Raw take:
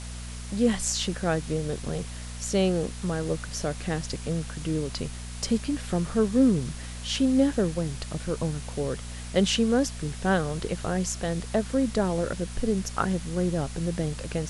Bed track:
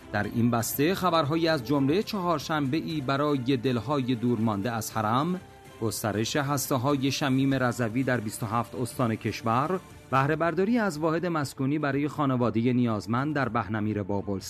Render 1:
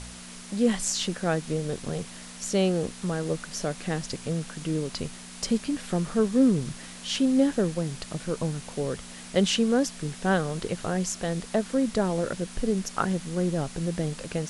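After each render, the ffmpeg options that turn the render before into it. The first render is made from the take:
-af "bandreject=f=60:t=h:w=4,bandreject=f=120:t=h:w=4"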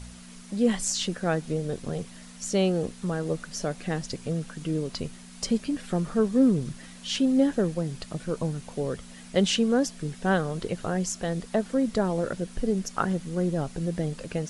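-af "afftdn=nr=7:nf=-43"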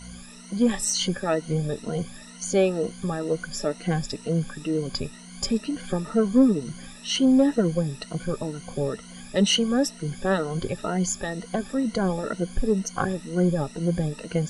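-af "afftfilt=real='re*pow(10,17/40*sin(2*PI*(1.9*log(max(b,1)*sr/1024/100)/log(2)-(2.1)*(pts-256)/sr)))':imag='im*pow(10,17/40*sin(2*PI*(1.9*log(max(b,1)*sr/1024/100)/log(2)-(2.1)*(pts-256)/sr)))':win_size=1024:overlap=0.75,asoftclip=type=tanh:threshold=-7.5dB"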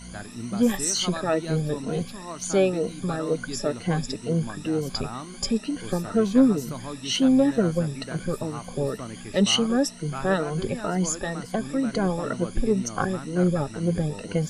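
-filter_complex "[1:a]volume=-11dB[a];[0:a][a]amix=inputs=2:normalize=0"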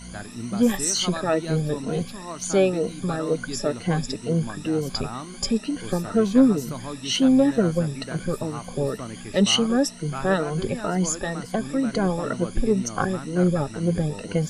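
-af "volume=1.5dB"

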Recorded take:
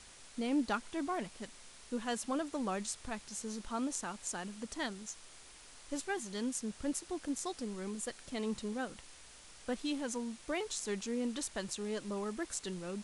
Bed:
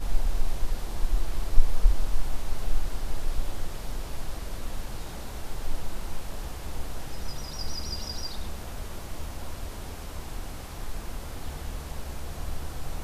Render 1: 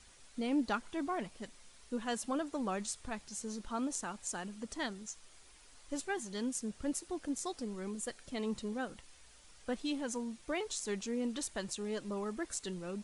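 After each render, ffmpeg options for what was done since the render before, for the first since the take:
-af "afftdn=nr=7:nf=-56"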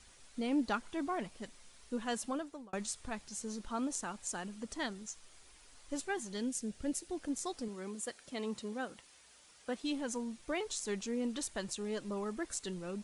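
-filter_complex "[0:a]asettb=1/sr,asplit=3[a][b][c];[a]atrim=end=6.374[d];[b]atrim=start=6.37:end=7.17,asetpts=PTS-STARTPTS,afade=t=in:d=0.004:c=qsin,afade=t=out:st=0.796:d=0.004:c=qsin,equalizer=f=1.1k:t=o:w=0.6:g=-8.5[e];[c]atrim=start=7.166[f];[d][e]acrossfade=d=0.004:c1=hsin:c2=qsin[g];[g][f]acrossfade=d=0.004:c1=qsin:c2=hsin,asettb=1/sr,asplit=3[h][i][j];[h]atrim=end=7.684[k];[i]atrim=start=7.68:end=9.84,asetpts=PTS-STARTPTS,afade=t=in:d=0.004:c=qsin,afade=t=out:st=2.156:d=0.004:c=qsin,highpass=f=220:p=1[l];[j]atrim=start=9.836[m];[k][l]acrossfade=d=0.004:c1=hsin:c2=qsin[n];[n][m]acrossfade=d=0.004:c1=qsin:c2=hsin,asplit=2[o][p];[o]atrim=end=2.73,asetpts=PTS-STARTPTS,afade=t=out:st=2.23:d=0.5[q];[p]atrim=start=2.73,asetpts=PTS-STARTPTS,afade=t=in:d=0.004:c=hsin[r];[q][r]concat=n=2:v=0:a=1"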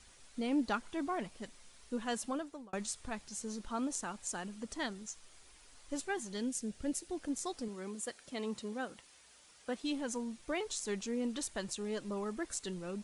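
-af anull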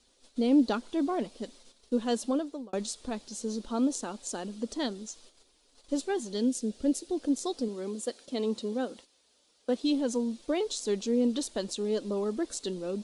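-af "agate=range=-10dB:threshold=-56dB:ratio=16:detection=peak,equalizer=f=125:t=o:w=1:g=-8,equalizer=f=250:t=o:w=1:g=10,equalizer=f=500:t=o:w=1:g=9,equalizer=f=2k:t=o:w=1:g=-5,equalizer=f=4k:t=o:w=1:g=9"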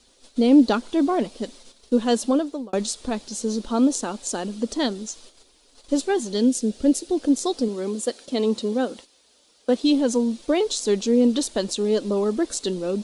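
-af "volume=8.5dB"

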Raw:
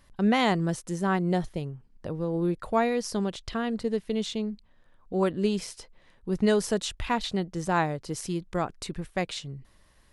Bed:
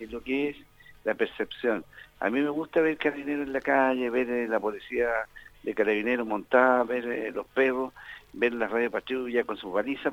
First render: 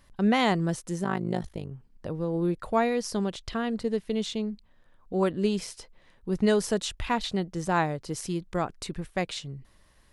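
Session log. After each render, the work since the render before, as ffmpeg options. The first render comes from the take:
-filter_complex "[0:a]asplit=3[a][b][c];[a]afade=t=out:st=1.03:d=0.02[d];[b]tremolo=f=52:d=0.919,afade=t=in:st=1.03:d=0.02,afade=t=out:st=1.7:d=0.02[e];[c]afade=t=in:st=1.7:d=0.02[f];[d][e][f]amix=inputs=3:normalize=0"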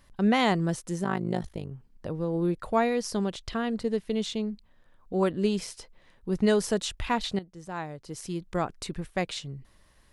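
-filter_complex "[0:a]asplit=2[a][b];[a]atrim=end=7.39,asetpts=PTS-STARTPTS,afade=t=out:st=7.386:d=0.004:c=hsin:silence=0.211349[c];[b]atrim=start=7.39,asetpts=PTS-STARTPTS,afade=t=in:d=1.16:c=qua:silence=0.211349[d];[c][d]concat=n=2:v=0:a=1"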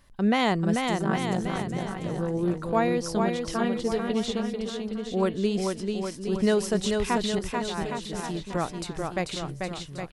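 -af "aecho=1:1:440|814|1132|1402|1632:0.631|0.398|0.251|0.158|0.1"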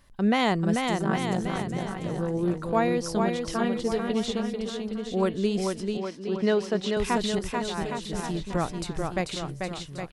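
-filter_complex "[0:a]asettb=1/sr,asplit=3[a][b][c];[a]atrim=end=5.974[d];[b]atrim=start=5.97:end=6.97,asetpts=PTS-STARTPTS,afade=t=in:d=0.004:c=qsin,afade=t=out:st=0.996:d=0.004:c=qsin,acrossover=split=160 5200:gain=0.0708 1 0.1[e][f][g];[e][f][g]amix=inputs=3:normalize=0[h];[c]atrim=start=6.966[i];[d][h]acrossfade=d=0.004:c1=hsin:c2=qsin[j];[j][i]acrossfade=d=0.004:c1=qsin:c2=hsin,asettb=1/sr,asplit=3[k][l][m];[k]atrim=end=8.084[n];[l]atrim=start=8.08:end=9.21,asetpts=PTS-STARTPTS,afade=t=in:d=0.004:c=qsin,afade=t=out:st=1.126:d=0.004:c=qsin,lowshelf=f=130:g=7[o];[m]atrim=start=9.206[p];[n][o]acrossfade=d=0.004:c1=hsin:c2=qsin[q];[q][p]acrossfade=d=0.004:c1=qsin:c2=hsin"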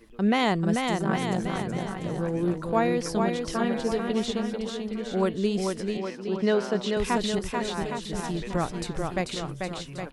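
-filter_complex "[1:a]volume=-17dB[a];[0:a][a]amix=inputs=2:normalize=0"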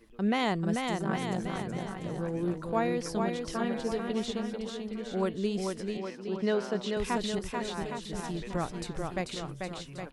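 -af "volume=-5dB"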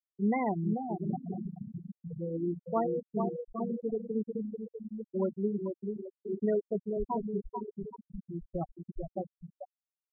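-af "bandreject=f=60:t=h:w=6,bandreject=f=120:t=h:w=6,bandreject=f=180:t=h:w=6,bandreject=f=240:t=h:w=6,bandreject=f=300:t=h:w=6,afftfilt=real='re*gte(hypot(re,im),0.126)':imag='im*gte(hypot(re,im),0.126)':win_size=1024:overlap=0.75"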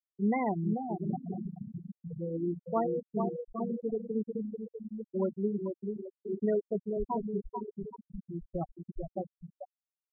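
-af anull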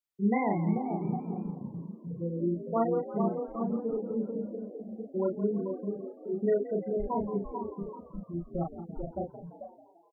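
-filter_complex "[0:a]asplit=2[a][b];[b]adelay=35,volume=-2.5dB[c];[a][c]amix=inputs=2:normalize=0,asplit=7[d][e][f][g][h][i][j];[e]adelay=171,afreqshift=55,volume=-14dB[k];[f]adelay=342,afreqshift=110,volume=-18.9dB[l];[g]adelay=513,afreqshift=165,volume=-23.8dB[m];[h]adelay=684,afreqshift=220,volume=-28.6dB[n];[i]adelay=855,afreqshift=275,volume=-33.5dB[o];[j]adelay=1026,afreqshift=330,volume=-38.4dB[p];[d][k][l][m][n][o][p]amix=inputs=7:normalize=0"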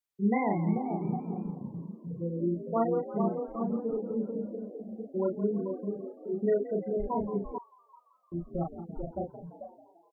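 -filter_complex "[0:a]asettb=1/sr,asplit=3[a][b][c];[a]atrim=end=7.584[d];[b]atrim=start=7.58:end=8.32,asetpts=PTS-STARTPTS,afade=t=in:d=0.004:c=qsin,afade=t=out:st=0.736:d=0.004:c=qsin,highpass=f=1.2k:w=0.5412,highpass=f=1.2k:w=1.3066[e];[c]atrim=start=8.316[f];[d][e]acrossfade=d=0.004:c1=hsin:c2=qsin[g];[g][f]acrossfade=d=0.004:c1=qsin:c2=hsin"

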